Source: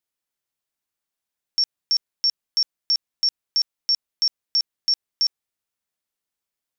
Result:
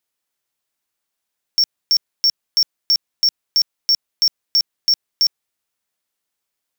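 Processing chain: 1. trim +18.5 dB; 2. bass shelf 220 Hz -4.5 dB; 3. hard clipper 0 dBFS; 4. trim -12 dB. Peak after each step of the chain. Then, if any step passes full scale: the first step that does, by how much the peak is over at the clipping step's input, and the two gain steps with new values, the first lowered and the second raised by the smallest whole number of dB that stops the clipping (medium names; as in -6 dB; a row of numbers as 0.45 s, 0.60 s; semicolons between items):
+3.5 dBFS, +3.5 dBFS, 0.0 dBFS, -12.0 dBFS; step 1, 3.5 dB; step 1 +14.5 dB, step 4 -8 dB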